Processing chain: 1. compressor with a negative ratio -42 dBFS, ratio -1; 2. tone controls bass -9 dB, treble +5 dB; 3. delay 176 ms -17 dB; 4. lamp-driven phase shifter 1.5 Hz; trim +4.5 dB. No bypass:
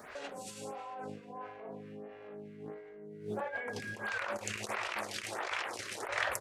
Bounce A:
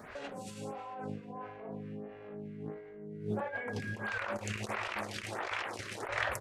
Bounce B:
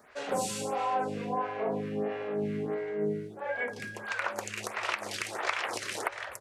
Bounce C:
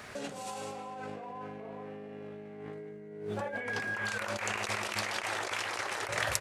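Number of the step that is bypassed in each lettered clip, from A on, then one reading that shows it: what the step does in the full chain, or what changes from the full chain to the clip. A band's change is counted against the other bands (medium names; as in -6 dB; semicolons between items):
2, crest factor change -2.0 dB; 1, crest factor change -4.5 dB; 4, loudness change +3.5 LU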